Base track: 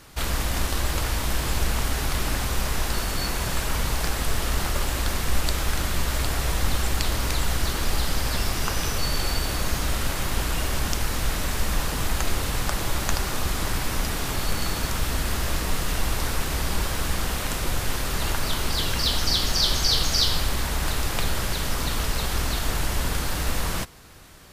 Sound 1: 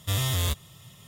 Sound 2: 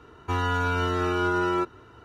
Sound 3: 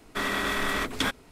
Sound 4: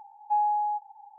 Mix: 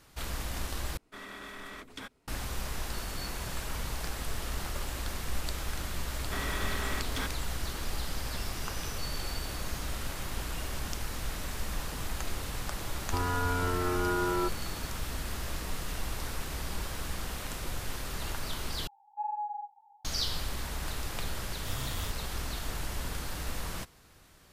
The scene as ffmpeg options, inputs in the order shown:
ffmpeg -i bed.wav -i cue0.wav -i cue1.wav -i cue2.wav -i cue3.wav -filter_complex "[3:a]asplit=2[link_01][link_02];[0:a]volume=-10.5dB[link_03];[link_02]asoftclip=type=tanh:threshold=-23dB[link_04];[2:a]lowpass=1900[link_05];[4:a]flanger=delay=15.5:depth=5.4:speed=1.8[link_06];[1:a]highpass=59[link_07];[link_03]asplit=3[link_08][link_09][link_10];[link_08]atrim=end=0.974[link_11];[link_01]atrim=end=1.31,asetpts=PTS-STARTPTS,volume=-16.5dB[link_12];[link_09]atrim=start=2.276:end=18.874[link_13];[link_06]atrim=end=1.18,asetpts=PTS-STARTPTS,volume=-7.5dB[link_14];[link_10]atrim=start=20.046[link_15];[link_04]atrim=end=1.31,asetpts=PTS-STARTPTS,volume=-6.5dB,afade=type=in:duration=0.004:curve=hsin,afade=type=out:start_time=1.306:duration=0.004:curve=hsin,adelay=6160[link_16];[link_05]atrim=end=2.04,asetpts=PTS-STARTPTS,volume=-5dB,afade=type=in:duration=0.004:curve=hsin,afade=type=out:start_time=2.036:duration=0.004:curve=hsin,adelay=566244S[link_17];[link_07]atrim=end=1.07,asetpts=PTS-STARTPTS,volume=-13dB,afade=type=in:duration=0.004:curve=hsin,afade=type=out:start_time=1.066:duration=0.004:curve=hsin,adelay=21580[link_18];[link_11][link_12]acrossfade=duration=0.004:curve1=hsin:curve2=hsin[link_19];[link_19][link_13]acrossfade=duration=0.004:curve1=hsin:curve2=hsin[link_20];[link_20][link_14]acrossfade=duration=0.004:curve1=hsin:curve2=hsin[link_21];[link_21][link_15]acrossfade=duration=0.004:curve1=hsin:curve2=hsin[link_22];[link_22][link_16][link_17][link_18]amix=inputs=4:normalize=0" out.wav

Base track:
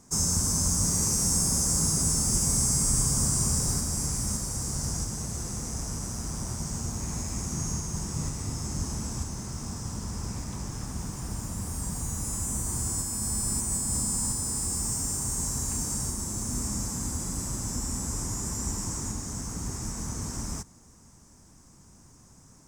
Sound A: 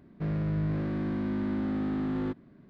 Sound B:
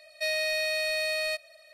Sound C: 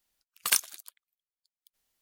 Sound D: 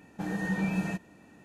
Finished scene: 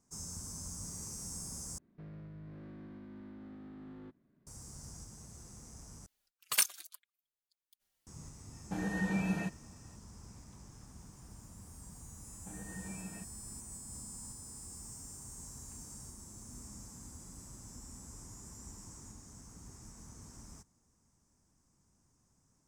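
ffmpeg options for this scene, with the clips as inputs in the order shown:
ffmpeg -i bed.wav -i cue0.wav -i cue1.wav -i cue2.wav -i cue3.wav -filter_complex "[4:a]asplit=2[link_01][link_02];[0:a]volume=-18.5dB[link_03];[1:a]alimiter=level_in=5.5dB:limit=-24dB:level=0:latency=1:release=490,volume=-5.5dB[link_04];[3:a]asplit=2[link_05][link_06];[link_06]adelay=4.1,afreqshift=-2.5[link_07];[link_05][link_07]amix=inputs=2:normalize=1[link_08];[link_01]agate=range=-33dB:threshold=-51dB:ratio=3:release=100:detection=peak[link_09];[link_03]asplit=3[link_10][link_11][link_12];[link_10]atrim=end=1.784[link_13];[link_04]atrim=end=2.69,asetpts=PTS-STARTPTS,volume=-15dB[link_14];[link_11]atrim=start=4.466:end=6.064[link_15];[link_08]atrim=end=2.01,asetpts=PTS-STARTPTS,volume=-1dB[link_16];[link_12]atrim=start=8.066[link_17];[link_09]atrim=end=1.44,asetpts=PTS-STARTPTS,volume=-3.5dB,afade=type=in:duration=0.004:curve=hsin,afade=type=out:start_time=1.436:duration=0.004:curve=hsin,adelay=8520[link_18];[link_02]atrim=end=1.44,asetpts=PTS-STARTPTS,volume=-16.5dB,afade=type=in:duration=0.004:curve=hsin,afade=type=out:start_time=1.436:duration=0.004:curve=hsin,adelay=12270[link_19];[link_13][link_14]acrossfade=duration=0.004:curve1=hsin:curve2=hsin[link_20];[link_20][link_15]acrossfade=duration=0.004:curve1=hsin:curve2=hsin[link_21];[link_21][link_16]acrossfade=duration=0.004:curve1=hsin:curve2=hsin[link_22];[link_22][link_17]acrossfade=duration=0.004:curve1=hsin:curve2=hsin[link_23];[link_23][link_18][link_19]amix=inputs=3:normalize=0" out.wav

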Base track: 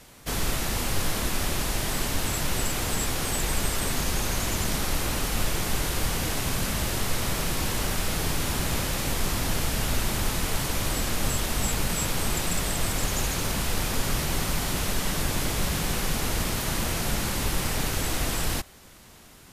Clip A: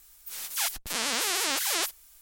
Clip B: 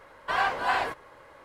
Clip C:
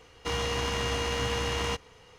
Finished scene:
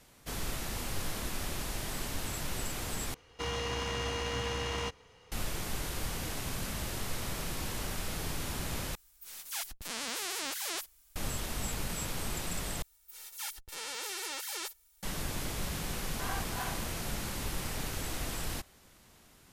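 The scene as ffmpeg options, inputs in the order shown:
ffmpeg -i bed.wav -i cue0.wav -i cue1.wav -i cue2.wav -filter_complex "[1:a]asplit=2[link_01][link_02];[0:a]volume=-9.5dB[link_03];[link_01]lowshelf=frequency=210:gain=6[link_04];[link_02]aecho=1:1:2.2:0.77[link_05];[link_03]asplit=4[link_06][link_07][link_08][link_09];[link_06]atrim=end=3.144[link_10];[3:a]atrim=end=2.18,asetpts=PTS-STARTPTS,volume=-5dB[link_11];[link_07]atrim=start=5.316:end=8.954[link_12];[link_04]atrim=end=2.21,asetpts=PTS-STARTPTS,volume=-9dB[link_13];[link_08]atrim=start=11.156:end=12.824[link_14];[link_05]atrim=end=2.21,asetpts=PTS-STARTPTS,volume=-13dB[link_15];[link_09]atrim=start=15.026[link_16];[2:a]atrim=end=1.44,asetpts=PTS-STARTPTS,volume=-14.5dB,afade=type=in:duration=0.004:curve=hsin,afade=type=out:start_time=1.436:duration=0.004:curve=hsin,adelay=15910[link_17];[link_10][link_11]acrossfade=duration=0.004:curve1=hsin:curve2=hsin[link_18];[link_18][link_12]acrossfade=duration=0.004:curve1=hsin:curve2=hsin[link_19];[link_19][link_13]acrossfade=duration=0.004:curve1=hsin:curve2=hsin[link_20];[link_20][link_14]acrossfade=duration=0.004:curve1=hsin:curve2=hsin[link_21];[link_21][link_15]acrossfade=duration=0.004:curve1=hsin:curve2=hsin[link_22];[link_22][link_16]acrossfade=duration=0.004:curve1=hsin:curve2=hsin[link_23];[link_23][link_17]amix=inputs=2:normalize=0" out.wav

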